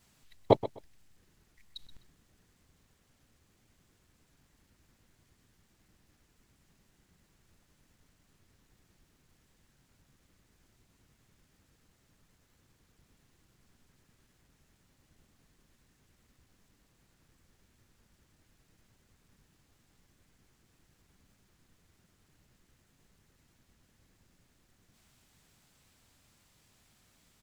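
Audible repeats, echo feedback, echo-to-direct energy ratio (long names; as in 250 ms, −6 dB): 2, 20%, −14.5 dB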